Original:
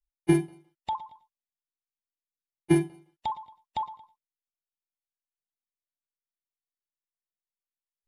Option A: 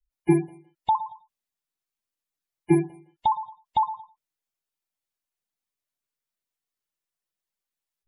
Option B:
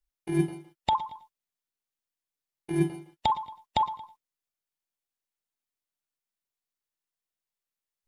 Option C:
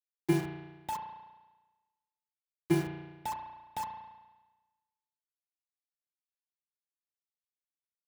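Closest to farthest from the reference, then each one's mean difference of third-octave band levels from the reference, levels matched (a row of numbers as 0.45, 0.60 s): A, B, C; 3.5, 7.0, 9.5 dB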